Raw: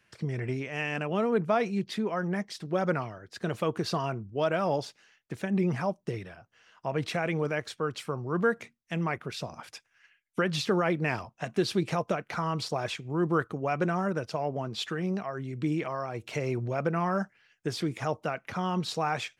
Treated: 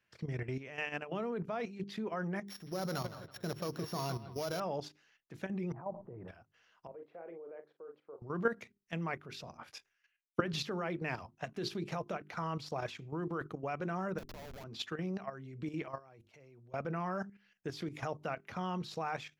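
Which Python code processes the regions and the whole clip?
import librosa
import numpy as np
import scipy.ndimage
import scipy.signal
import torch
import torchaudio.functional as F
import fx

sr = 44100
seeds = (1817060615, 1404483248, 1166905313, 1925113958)

y = fx.chain(x, sr, fx.sample_sort(block=8),
    fx.low_shelf(hz=93.0, db=7.0),
    fx.echo_bbd(ms=163, stages=4096, feedback_pct=37, wet_db=-11.5), at=(2.47, 4.6))
y = fx.chain(y, sr, fx.ladder_lowpass(hz=1100.0, resonance_pct=40),
    fx.sustainer(db_per_s=25.0), at=(5.72, 6.28))
y = fx.chain(y, sr, fx.ladder_bandpass(hz=520.0, resonance_pct=45),
    fx.doubler(ms=41.0, db=-8.0), at=(6.87, 8.22))
y = fx.chain(y, sr, fx.doubler(ms=22.0, db=-7.0),
    fx.band_widen(depth_pct=70), at=(9.57, 10.4))
y = fx.chain(y, sr, fx.bass_treble(bass_db=-15, treble_db=1),
    fx.transient(attack_db=-9, sustain_db=3),
    fx.schmitt(flips_db=-36.5), at=(14.18, 14.64))
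y = fx.chain(y, sr, fx.highpass(hz=53.0, slope=12),
    fx.level_steps(step_db=23),
    fx.auto_swell(attack_ms=159.0), at=(15.98, 16.74))
y = fx.peak_eq(y, sr, hz=8700.0, db=-9.5, octaves=0.36)
y = fx.hum_notches(y, sr, base_hz=50, count=8)
y = fx.level_steps(y, sr, step_db=11)
y = y * librosa.db_to_amplitude(-3.5)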